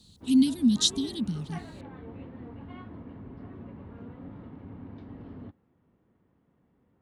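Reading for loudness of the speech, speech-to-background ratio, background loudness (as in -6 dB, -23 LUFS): -25.5 LUFS, 19.0 dB, -44.5 LUFS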